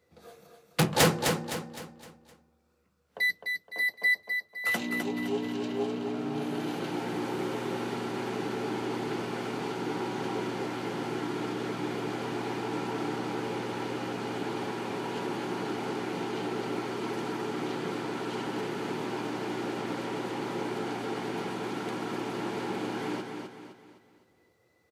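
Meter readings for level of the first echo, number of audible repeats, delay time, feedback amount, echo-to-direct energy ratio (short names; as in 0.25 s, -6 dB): -5.5 dB, 4, 0.257 s, 41%, -4.5 dB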